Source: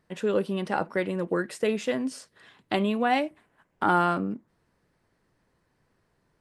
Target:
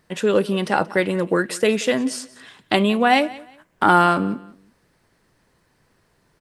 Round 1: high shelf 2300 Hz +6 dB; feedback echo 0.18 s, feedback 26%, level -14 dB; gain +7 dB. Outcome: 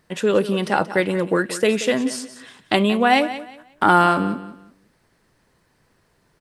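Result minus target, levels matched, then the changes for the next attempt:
echo-to-direct +6.5 dB
change: feedback echo 0.18 s, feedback 26%, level -20.5 dB

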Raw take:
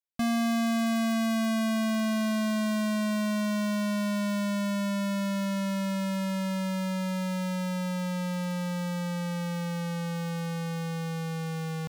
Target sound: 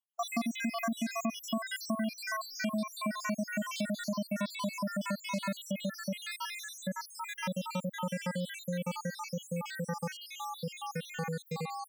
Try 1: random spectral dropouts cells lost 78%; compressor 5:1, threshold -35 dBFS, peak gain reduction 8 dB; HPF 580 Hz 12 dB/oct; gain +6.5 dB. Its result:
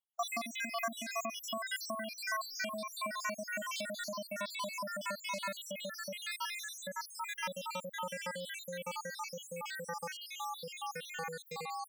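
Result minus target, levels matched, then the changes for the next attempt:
250 Hz band -11.0 dB
change: HPF 220 Hz 12 dB/oct

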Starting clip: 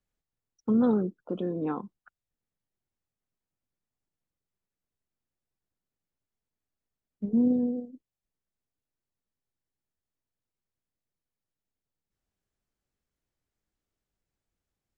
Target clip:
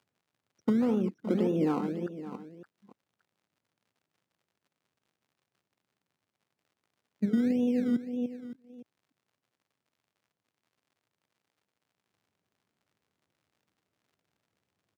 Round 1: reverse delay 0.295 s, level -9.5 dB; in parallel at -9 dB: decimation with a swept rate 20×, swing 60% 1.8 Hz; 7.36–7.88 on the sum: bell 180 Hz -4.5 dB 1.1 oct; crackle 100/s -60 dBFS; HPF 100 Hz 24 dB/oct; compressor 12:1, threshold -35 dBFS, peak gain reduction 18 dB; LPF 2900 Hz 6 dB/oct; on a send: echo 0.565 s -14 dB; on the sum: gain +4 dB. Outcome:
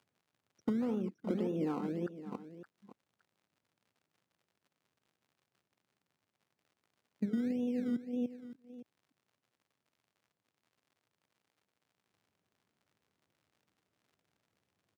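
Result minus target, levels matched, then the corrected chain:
compressor: peak gain reduction +7.5 dB
reverse delay 0.295 s, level -9.5 dB; in parallel at -9 dB: decimation with a swept rate 20×, swing 60% 1.8 Hz; 7.36–7.88 on the sum: bell 180 Hz -4.5 dB 1.1 oct; crackle 100/s -60 dBFS; HPF 100 Hz 24 dB/oct; compressor 12:1, threshold -27 dBFS, peak gain reduction 10.5 dB; LPF 2900 Hz 6 dB/oct; on a send: echo 0.565 s -14 dB; on the sum: gain +4 dB

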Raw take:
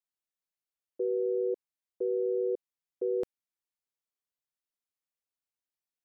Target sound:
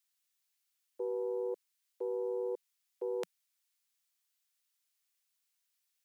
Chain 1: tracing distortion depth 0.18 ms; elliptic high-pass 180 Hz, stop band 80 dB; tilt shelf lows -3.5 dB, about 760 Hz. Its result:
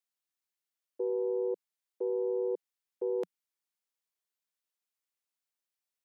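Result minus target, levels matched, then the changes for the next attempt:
1000 Hz band -5.5 dB
change: tilt shelf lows -14 dB, about 760 Hz

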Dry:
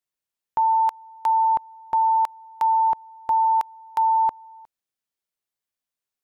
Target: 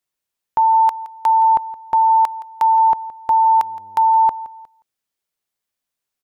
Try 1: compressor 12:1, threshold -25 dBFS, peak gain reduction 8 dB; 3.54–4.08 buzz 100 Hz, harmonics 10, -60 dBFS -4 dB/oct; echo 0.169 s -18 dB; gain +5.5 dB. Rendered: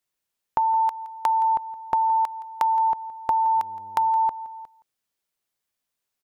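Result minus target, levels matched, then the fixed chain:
compressor: peak gain reduction +8 dB
3.54–4.08 buzz 100 Hz, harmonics 10, -60 dBFS -4 dB/oct; echo 0.169 s -18 dB; gain +5.5 dB

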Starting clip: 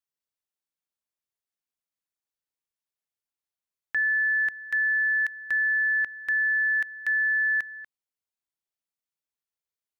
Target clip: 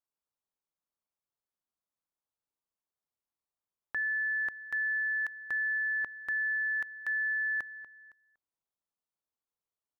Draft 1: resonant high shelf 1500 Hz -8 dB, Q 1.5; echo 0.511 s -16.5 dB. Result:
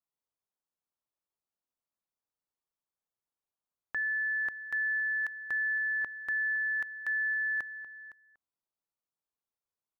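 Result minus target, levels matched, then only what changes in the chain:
echo-to-direct +7 dB
change: echo 0.511 s -23.5 dB

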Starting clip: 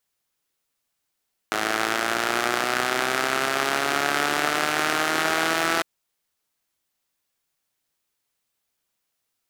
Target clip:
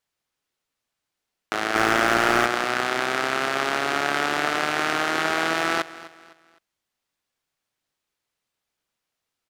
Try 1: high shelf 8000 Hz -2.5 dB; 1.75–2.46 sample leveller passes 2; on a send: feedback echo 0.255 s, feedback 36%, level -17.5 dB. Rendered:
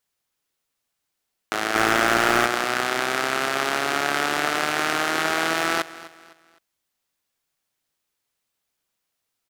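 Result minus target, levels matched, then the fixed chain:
8000 Hz band +3.5 dB
high shelf 8000 Hz -12 dB; 1.75–2.46 sample leveller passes 2; on a send: feedback echo 0.255 s, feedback 36%, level -17.5 dB

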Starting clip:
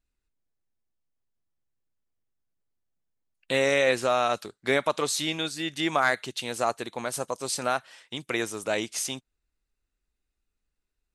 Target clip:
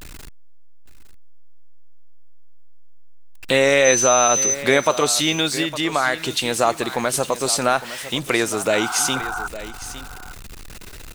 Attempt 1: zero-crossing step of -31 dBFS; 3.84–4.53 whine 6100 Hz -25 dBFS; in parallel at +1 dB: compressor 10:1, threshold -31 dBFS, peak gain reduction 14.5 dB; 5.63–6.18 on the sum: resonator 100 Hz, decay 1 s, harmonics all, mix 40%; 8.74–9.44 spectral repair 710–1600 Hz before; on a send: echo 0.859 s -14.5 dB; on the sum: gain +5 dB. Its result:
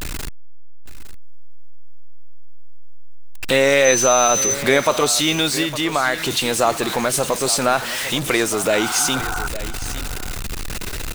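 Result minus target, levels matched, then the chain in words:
zero-crossing step: distortion +10 dB
zero-crossing step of -42 dBFS; 3.84–4.53 whine 6100 Hz -25 dBFS; in parallel at +1 dB: compressor 10:1, threshold -31 dBFS, peak gain reduction 14.5 dB; 5.63–6.18 on the sum: resonator 100 Hz, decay 1 s, harmonics all, mix 40%; 8.74–9.44 spectral repair 710–1600 Hz before; on a send: echo 0.859 s -14.5 dB; on the sum: gain +5 dB

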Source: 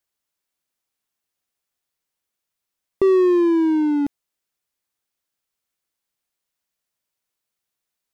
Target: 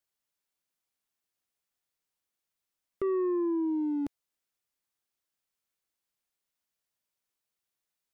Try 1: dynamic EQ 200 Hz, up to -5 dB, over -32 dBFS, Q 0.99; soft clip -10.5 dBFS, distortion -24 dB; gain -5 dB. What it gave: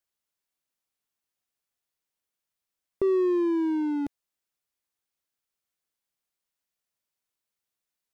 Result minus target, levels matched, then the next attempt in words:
soft clip: distortion -13 dB
dynamic EQ 200 Hz, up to -5 dB, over -32 dBFS, Q 0.99; soft clip -21 dBFS, distortion -11 dB; gain -5 dB

